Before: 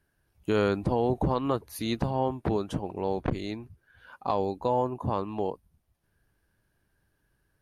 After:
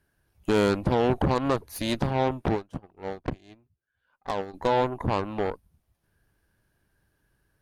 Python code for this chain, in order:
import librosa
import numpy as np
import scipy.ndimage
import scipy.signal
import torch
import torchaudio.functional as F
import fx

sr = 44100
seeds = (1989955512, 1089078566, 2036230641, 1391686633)

y = fx.cheby_harmonics(x, sr, harmonics=(8,), levels_db=(-18,), full_scale_db=-13.5)
y = fx.upward_expand(y, sr, threshold_db=-37.0, expansion=2.5, at=(2.54, 4.53), fade=0.02)
y = y * librosa.db_to_amplitude(2.0)